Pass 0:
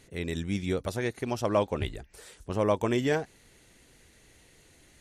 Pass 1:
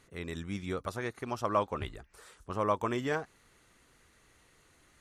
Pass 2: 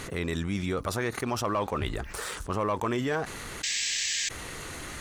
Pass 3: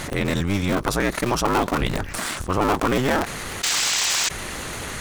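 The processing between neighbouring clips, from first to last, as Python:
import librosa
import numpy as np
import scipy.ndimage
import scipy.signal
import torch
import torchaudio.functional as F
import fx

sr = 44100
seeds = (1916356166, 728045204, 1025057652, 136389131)

y1 = fx.peak_eq(x, sr, hz=1200.0, db=12.0, octaves=0.73)
y1 = y1 * librosa.db_to_amplitude(-7.0)
y2 = fx.spec_paint(y1, sr, seeds[0], shape='noise', start_s=3.63, length_s=0.66, low_hz=1600.0, high_hz=8100.0, level_db=-38.0)
y2 = fx.leveller(y2, sr, passes=1)
y2 = fx.env_flatten(y2, sr, amount_pct=70)
y2 = y2 * librosa.db_to_amplitude(-4.0)
y3 = fx.cycle_switch(y2, sr, every=2, mode='inverted')
y3 = y3 * librosa.db_to_amplitude(8.0)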